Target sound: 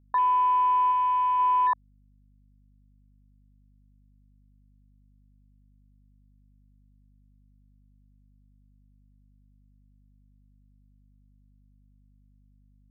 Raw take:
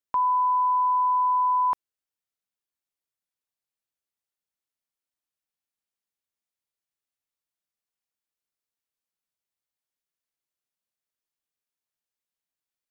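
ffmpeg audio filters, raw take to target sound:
-filter_complex "[0:a]afwtdn=0.02,asplit=3[a][b][c];[a]afade=t=out:st=0.91:d=0.02[d];[b]equalizer=f=510:w=1.9:g=-13,afade=t=in:st=0.91:d=0.02,afade=t=out:st=1.38:d=0.02[e];[c]afade=t=in:st=1.38:d=0.02[f];[d][e][f]amix=inputs=3:normalize=0,aeval=exprs='val(0)+0.00112*(sin(2*PI*50*n/s)+sin(2*PI*2*50*n/s)/2+sin(2*PI*3*50*n/s)/3+sin(2*PI*4*50*n/s)/4+sin(2*PI*5*50*n/s)/5)':c=same"

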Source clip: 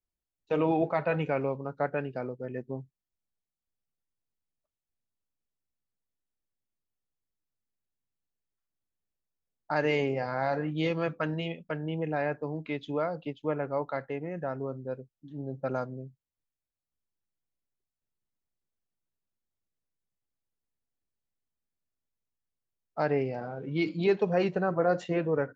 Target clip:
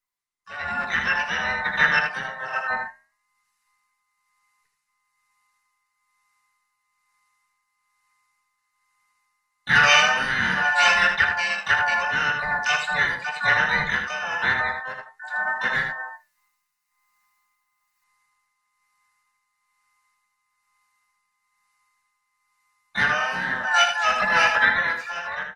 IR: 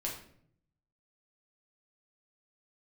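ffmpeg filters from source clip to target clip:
-filter_complex "[0:a]afftfilt=real='real(if(between(b,1,1008),(2*floor((b-1)/48)+1)*48-b,b),0)':imag='imag(if(between(b,1,1008),(2*floor((b-1)/48)+1)*48-b,b),0)*if(between(b,1,1008),-1,1)':win_size=2048:overlap=0.75,acrossover=split=3000[a][b];[b]acompressor=threshold=-59dB:ratio=4:attack=1:release=60[c];[a][c]amix=inputs=2:normalize=0,asplit=4[d][e][f][g];[e]asetrate=35002,aresample=44100,atempo=1.25992,volume=-9dB[h];[f]asetrate=52444,aresample=44100,atempo=0.840896,volume=-11dB[i];[g]asetrate=88200,aresample=44100,atempo=0.5,volume=-10dB[j];[d][h][i][j]amix=inputs=4:normalize=0,aecho=1:1:26|79:0.168|0.473,tremolo=f=1.1:d=0.51,acrossover=split=580[k][l];[k]asoftclip=type=tanh:threshold=-35dB[m];[m][l]amix=inputs=2:normalize=0,flanger=delay=9.1:depth=7.2:regen=-80:speed=0.19:shape=triangular,firequalizer=gain_entry='entry(200,0);entry(320,-21);entry(1500,7)':delay=0.05:min_phase=1,dynaudnorm=f=200:g=11:m=15.5dB,lowshelf=f=82:g=-7.5,bandreject=f=3.3k:w=5.9,volume=3dB" -ar 48000 -c:a libopus -b:a 32k

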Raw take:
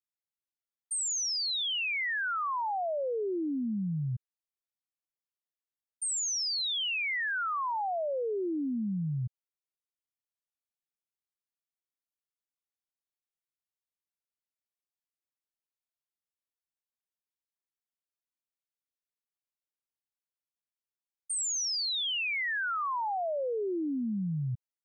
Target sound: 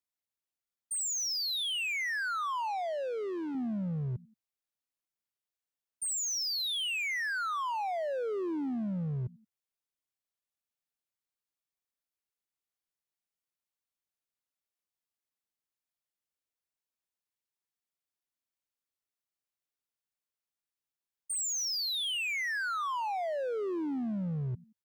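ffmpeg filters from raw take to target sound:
-filter_complex "[0:a]asplit=3[a][b][c];[b]adelay=85,afreqshift=47,volume=-23dB[d];[c]adelay=170,afreqshift=94,volume=-31.6dB[e];[a][d][e]amix=inputs=3:normalize=0,asoftclip=type=hard:threshold=-31.5dB,asettb=1/sr,asplit=3[f][g][h];[f]atrim=end=2.674[i];[g]atrim=start=2.67:end=3.55,asetpts=PTS-STARTPTS,afade=t=in:d=0.004:c=qsin,afade=t=out:st=0.876:d=0.004:c=qsin,asplit=2[j][k];[k]highpass=f=720:p=1,volume=9dB,asoftclip=type=tanh:threshold=-31.5dB[l];[j][l]amix=inputs=2:normalize=0,lowpass=f=6.7k:p=1,volume=-6dB[m];[h]atrim=start=3.546[n];[i][m]acrossfade=d=0.004:c1=hsin:c2=qsin[o];[o][n]acrossfade=d=0.004:c1=qsin:c2=hsin"

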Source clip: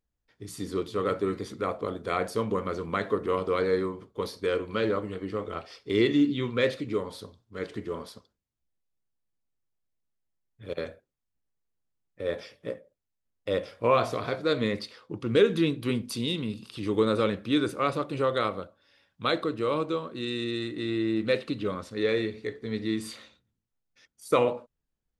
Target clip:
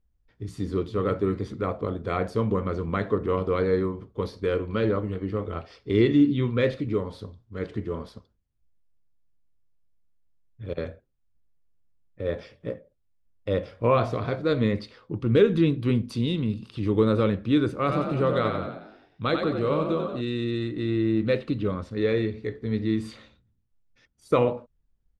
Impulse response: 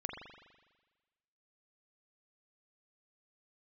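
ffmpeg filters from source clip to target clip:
-filter_complex "[0:a]aemphasis=mode=reproduction:type=bsi,asplit=3[a][b][c];[a]afade=t=out:st=17.85:d=0.02[d];[b]asplit=7[e][f][g][h][i][j][k];[f]adelay=91,afreqshift=41,volume=-5.5dB[l];[g]adelay=182,afreqshift=82,volume=-11.7dB[m];[h]adelay=273,afreqshift=123,volume=-17.9dB[n];[i]adelay=364,afreqshift=164,volume=-24.1dB[o];[j]adelay=455,afreqshift=205,volume=-30.3dB[p];[k]adelay=546,afreqshift=246,volume=-36.5dB[q];[e][l][m][n][o][p][q]amix=inputs=7:normalize=0,afade=t=in:st=17.85:d=0.02,afade=t=out:st=20.2:d=0.02[r];[c]afade=t=in:st=20.2:d=0.02[s];[d][r][s]amix=inputs=3:normalize=0"

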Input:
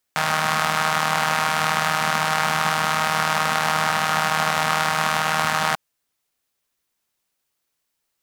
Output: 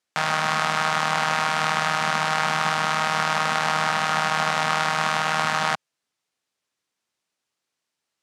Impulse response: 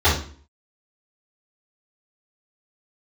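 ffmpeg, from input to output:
-af "highpass=110,lowpass=7.5k,volume=-1.5dB"

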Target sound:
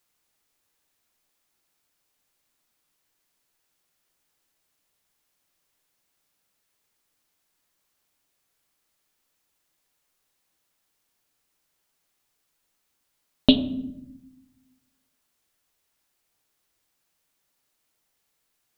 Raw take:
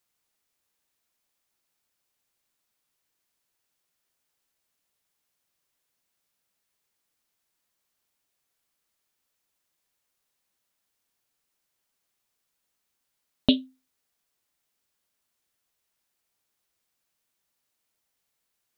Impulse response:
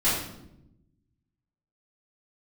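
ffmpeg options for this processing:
-filter_complex "[0:a]asplit=2[a][b];[1:a]atrim=start_sample=2205,lowpass=f=1.8k:p=1[c];[b][c]afir=irnorm=-1:irlink=0,volume=-21dB[d];[a][d]amix=inputs=2:normalize=0,volume=4dB"

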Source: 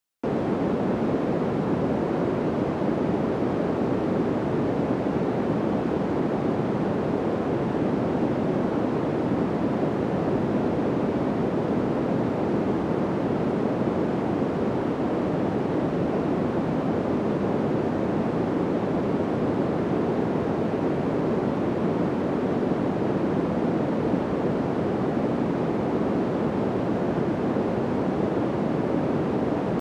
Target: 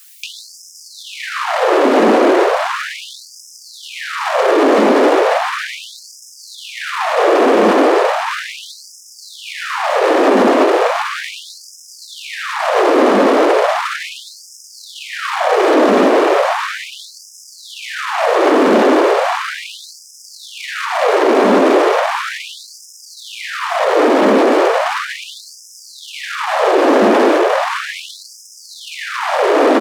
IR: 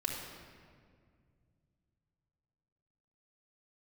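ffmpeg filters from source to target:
-filter_complex "[0:a]highshelf=f=4.9k:g=8,asplit=2[a][b];[b]aecho=0:1:360:0.631[c];[a][c]amix=inputs=2:normalize=0,acrossover=split=420|920[d][e][f];[d]acompressor=threshold=-37dB:ratio=4[g];[e]acompressor=threshold=-38dB:ratio=4[h];[f]acompressor=threshold=-45dB:ratio=4[i];[g][h][i]amix=inputs=3:normalize=0,asoftclip=type=tanh:threshold=-34.5dB,asplit=2[j][k];[1:a]atrim=start_sample=2205,asetrate=70560,aresample=44100[l];[k][l]afir=irnorm=-1:irlink=0,volume=-6.5dB[m];[j][m]amix=inputs=2:normalize=0,alimiter=level_in=36dB:limit=-1dB:release=50:level=0:latency=1,afftfilt=real='re*gte(b*sr/1024,210*pow(5000/210,0.5+0.5*sin(2*PI*0.36*pts/sr)))':imag='im*gte(b*sr/1024,210*pow(5000/210,0.5+0.5*sin(2*PI*0.36*pts/sr)))':win_size=1024:overlap=0.75,volume=-3dB"

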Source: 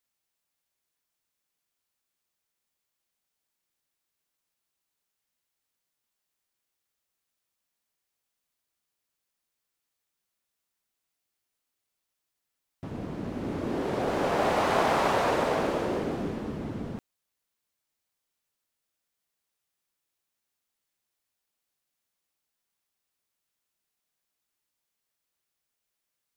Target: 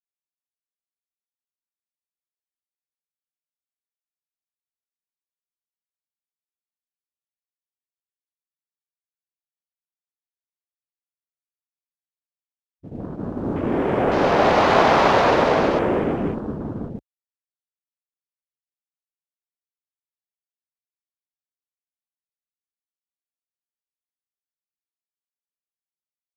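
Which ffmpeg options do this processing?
-af "agate=range=-33dB:threshold=-30dB:ratio=3:detection=peak,afwtdn=0.00562,volume=9dB"

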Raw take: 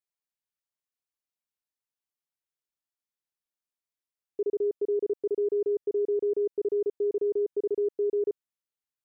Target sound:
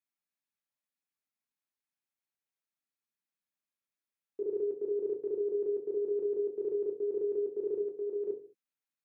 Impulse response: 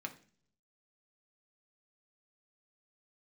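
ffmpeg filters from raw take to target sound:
-filter_complex "[0:a]asettb=1/sr,asplit=3[a][b][c];[a]atrim=end=7.824[d];[b]atrim=start=7.82:end=8.28,asetpts=PTS-STARTPTS,afade=t=in:d=0.004:c=qsin,afade=t=out:st=0.456:d=0.004:c=qsin,lowshelf=f=440:g=-5[e];[c]atrim=start=8.276[f];[d][e]acrossfade=d=0.004:c1=hsin:c2=qsin[g];[g][f]acrossfade=d=0.004:c1=qsin:c2=hsin[h];[1:a]atrim=start_sample=2205,afade=t=out:st=0.28:d=0.01,atrim=end_sample=12789[i];[h][i]afir=irnorm=-1:irlink=0"

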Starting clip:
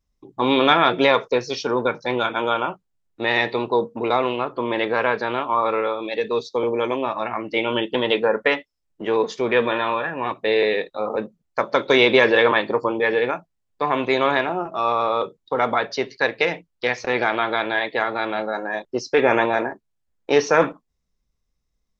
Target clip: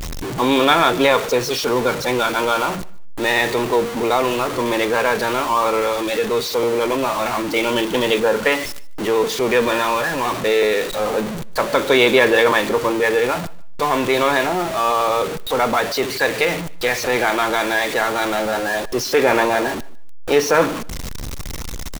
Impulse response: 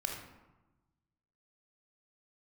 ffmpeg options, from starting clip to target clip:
-af "aeval=exprs='val(0)+0.5*0.0944*sgn(val(0))':c=same,bandreject=f=5.1k:w=29,aecho=1:1:148|296:0.075|0.0135"

